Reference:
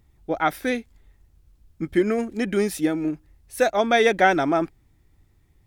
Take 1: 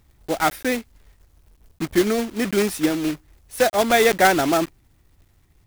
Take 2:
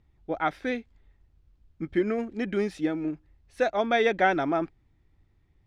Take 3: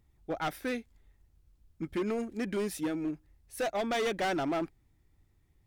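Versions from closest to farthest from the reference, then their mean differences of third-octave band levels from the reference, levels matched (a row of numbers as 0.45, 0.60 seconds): 2, 3, 1; 2.5, 4.0, 7.5 decibels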